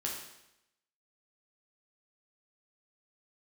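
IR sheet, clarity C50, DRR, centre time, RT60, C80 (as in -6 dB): 3.0 dB, -2.5 dB, 45 ms, 0.85 s, 6.0 dB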